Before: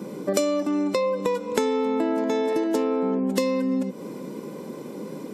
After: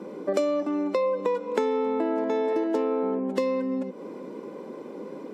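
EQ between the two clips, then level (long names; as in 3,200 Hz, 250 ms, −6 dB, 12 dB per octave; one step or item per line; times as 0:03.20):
high-pass filter 300 Hz 12 dB per octave
high-shelf EQ 3,100 Hz −11.5 dB
high-shelf EQ 8,800 Hz −11.5 dB
0.0 dB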